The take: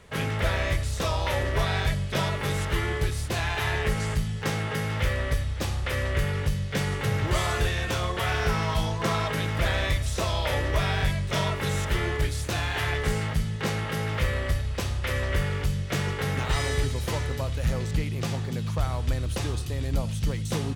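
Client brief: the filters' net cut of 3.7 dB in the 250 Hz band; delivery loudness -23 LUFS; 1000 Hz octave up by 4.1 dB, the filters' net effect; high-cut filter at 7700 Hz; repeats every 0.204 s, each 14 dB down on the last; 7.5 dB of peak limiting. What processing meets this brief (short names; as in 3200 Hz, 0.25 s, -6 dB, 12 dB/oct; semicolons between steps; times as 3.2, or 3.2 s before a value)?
LPF 7700 Hz; bell 250 Hz -7 dB; bell 1000 Hz +5.5 dB; limiter -20.5 dBFS; feedback echo 0.204 s, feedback 20%, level -14 dB; gain +7 dB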